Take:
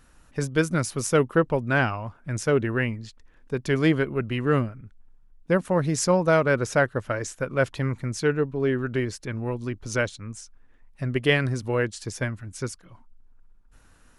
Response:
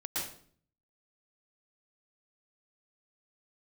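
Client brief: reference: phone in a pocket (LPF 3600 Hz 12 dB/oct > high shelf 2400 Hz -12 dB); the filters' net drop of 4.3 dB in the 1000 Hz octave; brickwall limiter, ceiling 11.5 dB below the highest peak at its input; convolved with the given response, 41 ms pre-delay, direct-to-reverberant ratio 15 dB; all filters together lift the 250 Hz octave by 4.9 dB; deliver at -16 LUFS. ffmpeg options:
-filter_complex "[0:a]equalizer=f=250:t=o:g=7,equalizer=f=1k:t=o:g=-3.5,alimiter=limit=-16dB:level=0:latency=1,asplit=2[a][b];[1:a]atrim=start_sample=2205,adelay=41[c];[b][c]afir=irnorm=-1:irlink=0,volume=-19dB[d];[a][d]amix=inputs=2:normalize=0,lowpass=3.6k,highshelf=f=2.4k:g=-12,volume=11.5dB"

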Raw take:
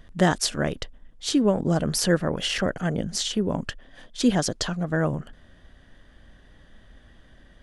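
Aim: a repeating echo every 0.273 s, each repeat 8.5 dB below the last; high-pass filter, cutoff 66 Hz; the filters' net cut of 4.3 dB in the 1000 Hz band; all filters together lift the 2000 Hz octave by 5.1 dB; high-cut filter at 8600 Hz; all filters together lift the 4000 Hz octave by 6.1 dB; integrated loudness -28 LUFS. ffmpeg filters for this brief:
-af "highpass=66,lowpass=8.6k,equalizer=f=1k:t=o:g=-9,equalizer=f=2k:t=o:g=8.5,equalizer=f=4k:t=o:g=6,aecho=1:1:273|546|819|1092:0.376|0.143|0.0543|0.0206,volume=-5dB"

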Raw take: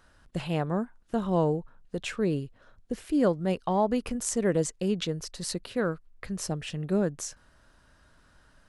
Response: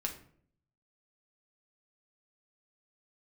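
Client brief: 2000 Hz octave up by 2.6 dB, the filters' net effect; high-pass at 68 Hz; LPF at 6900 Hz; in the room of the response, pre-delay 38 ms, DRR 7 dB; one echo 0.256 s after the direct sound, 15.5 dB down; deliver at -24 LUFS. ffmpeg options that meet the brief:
-filter_complex "[0:a]highpass=68,lowpass=6.9k,equalizer=f=2k:t=o:g=3.5,aecho=1:1:256:0.168,asplit=2[a][b];[1:a]atrim=start_sample=2205,adelay=38[c];[b][c]afir=irnorm=-1:irlink=0,volume=-8.5dB[d];[a][d]amix=inputs=2:normalize=0,volume=5dB"

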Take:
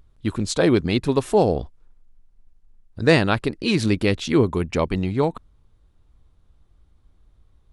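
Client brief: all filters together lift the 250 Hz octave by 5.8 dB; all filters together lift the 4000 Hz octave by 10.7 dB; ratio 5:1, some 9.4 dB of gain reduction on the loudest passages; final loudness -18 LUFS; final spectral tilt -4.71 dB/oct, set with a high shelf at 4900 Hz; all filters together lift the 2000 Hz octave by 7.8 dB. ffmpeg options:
-af "equalizer=f=250:t=o:g=7.5,equalizer=f=2k:t=o:g=6,equalizer=f=4k:t=o:g=8,highshelf=f=4.9k:g=6.5,acompressor=threshold=-18dB:ratio=5,volume=5dB"

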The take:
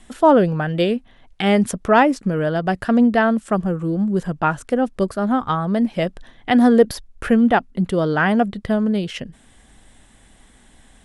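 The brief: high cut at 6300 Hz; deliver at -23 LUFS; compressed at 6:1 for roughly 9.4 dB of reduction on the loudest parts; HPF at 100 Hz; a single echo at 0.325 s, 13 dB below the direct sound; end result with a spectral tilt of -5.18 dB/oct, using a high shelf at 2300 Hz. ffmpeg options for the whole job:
-af "highpass=100,lowpass=6.3k,highshelf=f=2.3k:g=3.5,acompressor=threshold=-18dB:ratio=6,aecho=1:1:325:0.224,volume=0.5dB"

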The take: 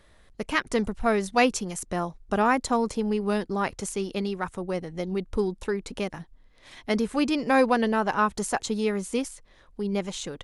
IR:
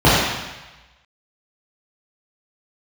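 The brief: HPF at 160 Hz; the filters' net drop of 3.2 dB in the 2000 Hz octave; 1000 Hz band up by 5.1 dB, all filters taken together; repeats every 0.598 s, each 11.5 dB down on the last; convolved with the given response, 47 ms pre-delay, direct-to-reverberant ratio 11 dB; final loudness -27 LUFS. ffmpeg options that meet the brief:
-filter_complex "[0:a]highpass=160,equalizer=f=1k:t=o:g=8.5,equalizer=f=2k:t=o:g=-8,aecho=1:1:598|1196|1794:0.266|0.0718|0.0194,asplit=2[a][b];[1:a]atrim=start_sample=2205,adelay=47[c];[b][c]afir=irnorm=-1:irlink=0,volume=-39.5dB[d];[a][d]amix=inputs=2:normalize=0,volume=-2.5dB"

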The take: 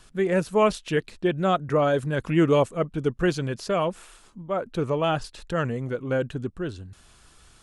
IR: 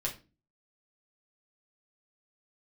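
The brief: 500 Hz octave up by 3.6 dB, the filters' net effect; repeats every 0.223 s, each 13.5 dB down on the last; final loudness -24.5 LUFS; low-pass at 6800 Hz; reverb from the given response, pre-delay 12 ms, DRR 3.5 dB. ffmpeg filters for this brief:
-filter_complex "[0:a]lowpass=6.8k,equalizer=f=500:t=o:g=4.5,aecho=1:1:223|446:0.211|0.0444,asplit=2[a][b];[1:a]atrim=start_sample=2205,adelay=12[c];[b][c]afir=irnorm=-1:irlink=0,volume=-7dB[d];[a][d]amix=inputs=2:normalize=0,volume=-3.5dB"

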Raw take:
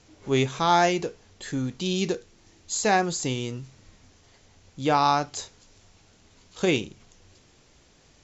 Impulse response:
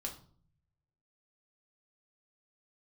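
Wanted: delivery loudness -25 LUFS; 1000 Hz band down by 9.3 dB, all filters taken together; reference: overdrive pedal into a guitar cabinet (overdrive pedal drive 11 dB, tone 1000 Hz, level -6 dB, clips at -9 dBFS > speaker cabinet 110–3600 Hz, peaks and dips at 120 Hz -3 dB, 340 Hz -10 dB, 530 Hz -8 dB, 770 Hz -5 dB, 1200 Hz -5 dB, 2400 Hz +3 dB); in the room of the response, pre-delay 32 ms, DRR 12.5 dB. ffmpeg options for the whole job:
-filter_complex "[0:a]equalizer=f=1k:t=o:g=-6.5,asplit=2[a][b];[1:a]atrim=start_sample=2205,adelay=32[c];[b][c]afir=irnorm=-1:irlink=0,volume=-11.5dB[d];[a][d]amix=inputs=2:normalize=0,asplit=2[e][f];[f]highpass=f=720:p=1,volume=11dB,asoftclip=type=tanh:threshold=-9dB[g];[e][g]amix=inputs=2:normalize=0,lowpass=f=1k:p=1,volume=-6dB,highpass=110,equalizer=f=120:t=q:w=4:g=-3,equalizer=f=340:t=q:w=4:g=-10,equalizer=f=530:t=q:w=4:g=-8,equalizer=f=770:t=q:w=4:g=-5,equalizer=f=1.2k:t=q:w=4:g=-5,equalizer=f=2.4k:t=q:w=4:g=3,lowpass=f=3.6k:w=0.5412,lowpass=f=3.6k:w=1.3066,volume=7dB"

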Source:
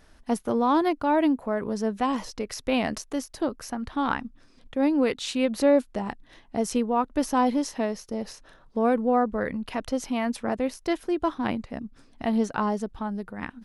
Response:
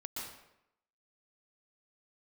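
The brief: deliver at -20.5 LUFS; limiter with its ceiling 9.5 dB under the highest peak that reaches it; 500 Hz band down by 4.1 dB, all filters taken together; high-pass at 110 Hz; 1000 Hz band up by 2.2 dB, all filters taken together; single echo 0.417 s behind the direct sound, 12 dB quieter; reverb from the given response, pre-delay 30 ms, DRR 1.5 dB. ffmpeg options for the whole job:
-filter_complex "[0:a]highpass=110,equalizer=f=500:t=o:g=-6.5,equalizer=f=1k:t=o:g=5,alimiter=limit=-17.5dB:level=0:latency=1,aecho=1:1:417:0.251,asplit=2[a][b];[1:a]atrim=start_sample=2205,adelay=30[c];[b][c]afir=irnorm=-1:irlink=0,volume=-1.5dB[d];[a][d]amix=inputs=2:normalize=0,volume=6dB"

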